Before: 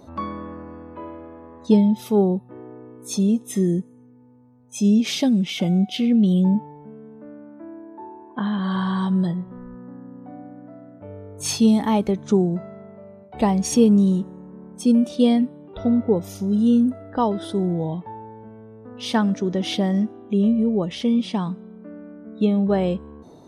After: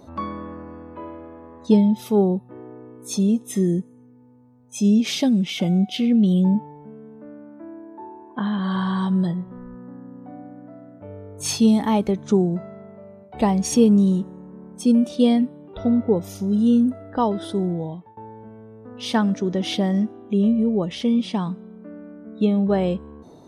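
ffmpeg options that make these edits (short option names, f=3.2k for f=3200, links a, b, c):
-filter_complex "[0:a]asplit=2[a][b];[a]atrim=end=18.17,asetpts=PTS-STARTPTS,afade=t=out:st=17.42:d=0.75:c=qsin:silence=0.0891251[c];[b]atrim=start=18.17,asetpts=PTS-STARTPTS,afade=t=in:d=0.004:c=hsin:silence=0.0891251[d];[c][d]concat=n=2:v=0:a=1"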